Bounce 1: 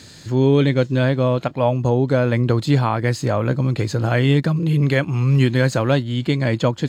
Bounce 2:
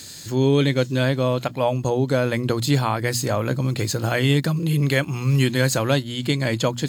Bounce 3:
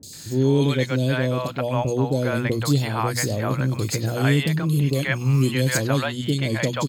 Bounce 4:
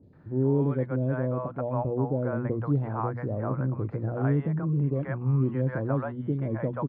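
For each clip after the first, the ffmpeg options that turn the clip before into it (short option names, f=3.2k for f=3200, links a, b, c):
-af "aemphasis=mode=production:type=75fm,bandreject=f=60:t=h:w=6,bandreject=f=120:t=h:w=6,bandreject=f=180:t=h:w=6,bandreject=f=240:t=h:w=6,volume=-2dB"
-filter_complex "[0:a]acrossover=split=600|3500[a][b][c];[c]adelay=30[d];[b]adelay=130[e];[a][e][d]amix=inputs=3:normalize=0"
-af "lowpass=f=1.3k:w=0.5412,lowpass=f=1.3k:w=1.3066,volume=-5.5dB"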